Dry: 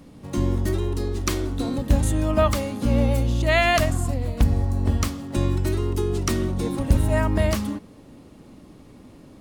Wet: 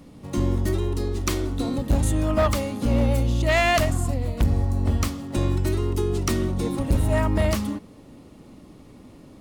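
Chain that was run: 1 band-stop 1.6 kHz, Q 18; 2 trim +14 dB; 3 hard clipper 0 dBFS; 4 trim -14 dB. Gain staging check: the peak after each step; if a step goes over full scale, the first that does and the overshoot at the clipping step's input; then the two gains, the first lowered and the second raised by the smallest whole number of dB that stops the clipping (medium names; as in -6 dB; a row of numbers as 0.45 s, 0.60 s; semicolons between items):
-8.0 dBFS, +6.0 dBFS, 0.0 dBFS, -14.0 dBFS; step 2, 6.0 dB; step 2 +8 dB, step 4 -8 dB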